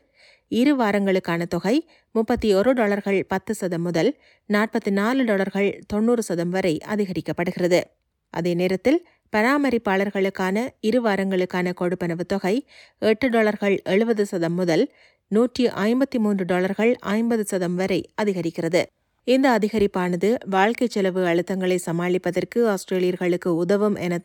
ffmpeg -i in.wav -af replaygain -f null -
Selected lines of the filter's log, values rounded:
track_gain = +2.4 dB
track_peak = 0.370